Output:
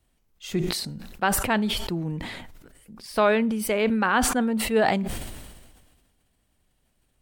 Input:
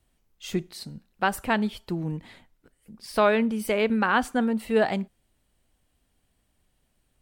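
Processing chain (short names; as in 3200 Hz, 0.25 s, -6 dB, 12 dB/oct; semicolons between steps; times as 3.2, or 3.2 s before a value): sustainer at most 37 dB/s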